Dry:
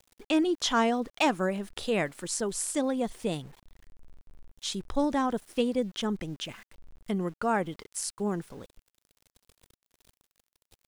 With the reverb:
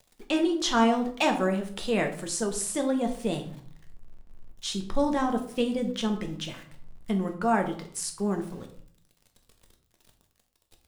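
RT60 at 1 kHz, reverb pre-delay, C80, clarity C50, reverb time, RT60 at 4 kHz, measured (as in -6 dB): 0.60 s, 5 ms, 13.5 dB, 10.0 dB, 0.55 s, 0.40 s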